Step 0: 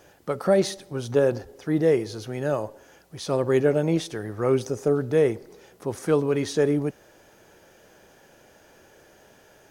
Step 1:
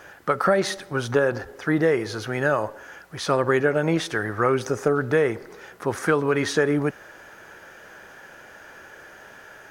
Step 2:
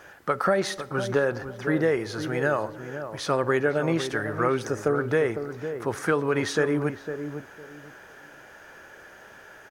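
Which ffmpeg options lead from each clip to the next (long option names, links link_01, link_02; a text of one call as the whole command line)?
ffmpeg -i in.wav -af "equalizer=frequency=1500:width_type=o:width=1.4:gain=13.5,acompressor=threshold=-19dB:ratio=4,volume=2.5dB" out.wav
ffmpeg -i in.wav -filter_complex "[0:a]asplit=2[link_01][link_02];[link_02]adelay=505,lowpass=frequency=930:poles=1,volume=-8dB,asplit=2[link_03][link_04];[link_04]adelay=505,lowpass=frequency=930:poles=1,volume=0.24,asplit=2[link_05][link_06];[link_06]adelay=505,lowpass=frequency=930:poles=1,volume=0.24[link_07];[link_01][link_03][link_05][link_07]amix=inputs=4:normalize=0,volume=-3dB" out.wav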